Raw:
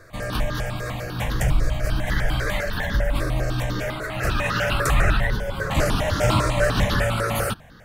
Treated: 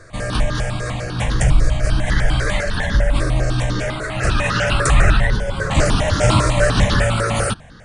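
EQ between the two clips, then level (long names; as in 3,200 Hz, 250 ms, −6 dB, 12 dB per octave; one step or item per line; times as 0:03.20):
linear-phase brick-wall low-pass 10,000 Hz
low-shelf EQ 220 Hz +3 dB
high-shelf EQ 6,900 Hz +7.5 dB
+3.5 dB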